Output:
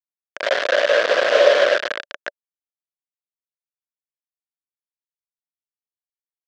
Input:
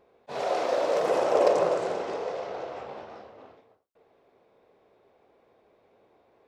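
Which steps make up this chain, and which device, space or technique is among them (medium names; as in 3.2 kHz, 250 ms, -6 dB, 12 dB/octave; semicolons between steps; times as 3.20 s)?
hand-held game console (bit crusher 4-bit; cabinet simulation 480–5200 Hz, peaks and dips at 580 Hz +10 dB, 840 Hz -10 dB, 1.6 kHz +10 dB, 3.2 kHz +4 dB); trim +3.5 dB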